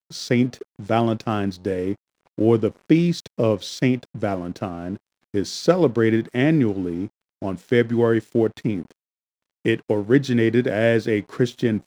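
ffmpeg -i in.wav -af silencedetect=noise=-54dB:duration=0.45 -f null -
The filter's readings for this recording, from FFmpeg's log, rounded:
silence_start: 8.92
silence_end: 9.65 | silence_duration: 0.72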